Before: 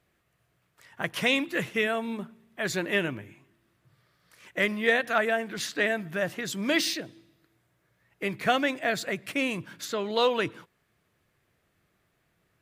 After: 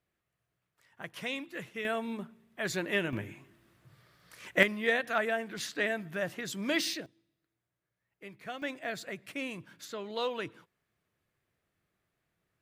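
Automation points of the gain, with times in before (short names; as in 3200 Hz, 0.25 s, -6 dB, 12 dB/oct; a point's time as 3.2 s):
-12 dB
from 1.85 s -4 dB
from 3.13 s +4 dB
from 4.63 s -5 dB
from 7.06 s -17 dB
from 8.62 s -9.5 dB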